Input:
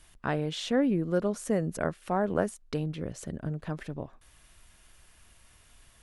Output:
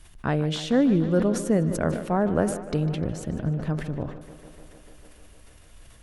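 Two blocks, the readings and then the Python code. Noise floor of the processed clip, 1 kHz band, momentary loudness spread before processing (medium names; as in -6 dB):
-50 dBFS, +3.0 dB, 11 LU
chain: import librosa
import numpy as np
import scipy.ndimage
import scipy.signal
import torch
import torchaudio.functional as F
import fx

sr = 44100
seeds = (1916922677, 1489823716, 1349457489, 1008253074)

y = fx.low_shelf(x, sr, hz=320.0, db=7.5)
y = fx.echo_tape(y, sr, ms=150, feedback_pct=85, wet_db=-12.5, lp_hz=4700.0, drive_db=13.0, wow_cents=20)
y = fx.sustainer(y, sr, db_per_s=79.0)
y = y * librosa.db_to_amplitude(1.5)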